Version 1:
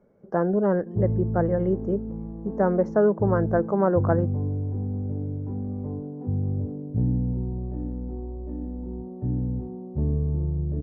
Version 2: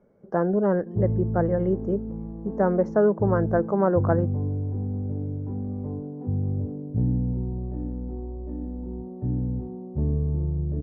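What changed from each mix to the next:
no change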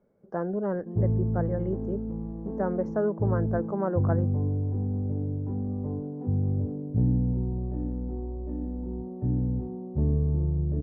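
speech -7.0 dB

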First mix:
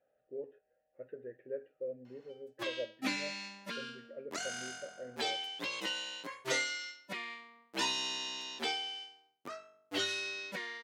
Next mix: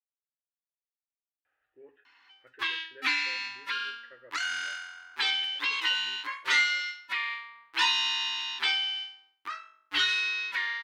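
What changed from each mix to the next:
speech: entry +1.45 s; master: add FFT filter 100 Hz 0 dB, 190 Hz -29 dB, 290 Hz -5 dB, 610 Hz -18 dB, 930 Hz +8 dB, 1.7 kHz +12 dB, 3.9 kHz +9 dB, 6.9 kHz -2 dB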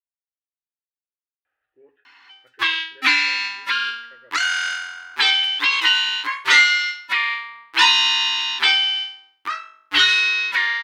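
background +11.0 dB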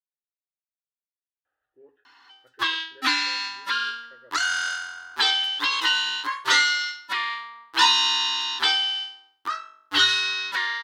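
master: add peaking EQ 2.3 kHz -13 dB 0.62 oct

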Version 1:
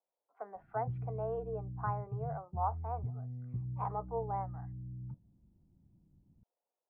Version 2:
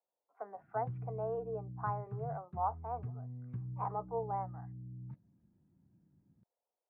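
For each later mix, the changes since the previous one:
background: remove steep low-pass 840 Hz 96 dB/octave; master: add band-pass 120–2400 Hz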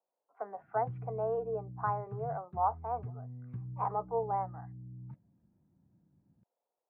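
speech +4.5 dB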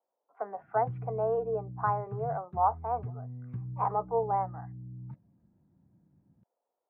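speech +4.0 dB; background +3.5 dB

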